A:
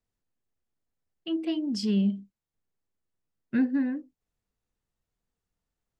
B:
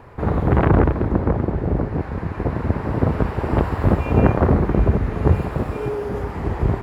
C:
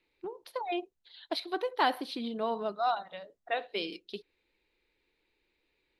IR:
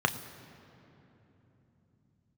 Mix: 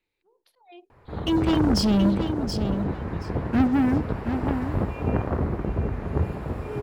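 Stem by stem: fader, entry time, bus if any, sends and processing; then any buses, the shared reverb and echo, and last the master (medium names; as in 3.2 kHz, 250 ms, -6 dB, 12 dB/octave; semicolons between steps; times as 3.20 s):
-0.5 dB, 0.00 s, no send, echo send -7.5 dB, waveshaping leveller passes 3
-11.5 dB, 0.90 s, no send, echo send -10.5 dB, de-hum 54.19 Hz, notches 37; level rider
-6.0 dB, 0.00 s, no send, no echo send, slow attack 515 ms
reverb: none
echo: feedback delay 726 ms, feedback 17%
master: none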